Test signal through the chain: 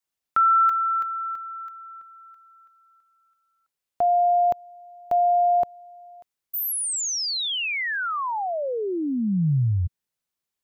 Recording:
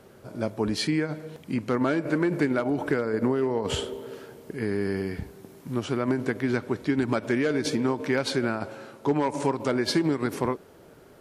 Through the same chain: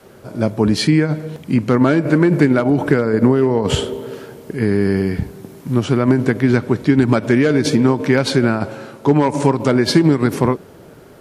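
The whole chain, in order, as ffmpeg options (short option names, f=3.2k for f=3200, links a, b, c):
-af "adynamicequalizer=threshold=0.00794:dfrequency=140:dqfactor=0.79:tfrequency=140:tqfactor=0.79:attack=5:release=100:ratio=0.375:range=3.5:mode=boostabove:tftype=bell,volume=8.5dB"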